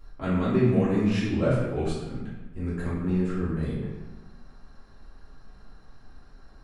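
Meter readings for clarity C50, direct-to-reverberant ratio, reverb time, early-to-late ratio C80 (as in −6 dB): 0.0 dB, −12.0 dB, 1.2 s, 3.0 dB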